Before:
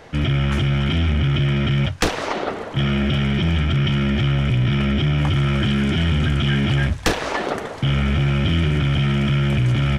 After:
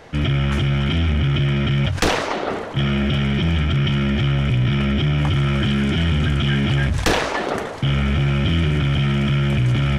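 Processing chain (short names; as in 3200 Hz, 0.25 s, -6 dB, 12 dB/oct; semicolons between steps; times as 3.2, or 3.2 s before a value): sustainer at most 48 dB/s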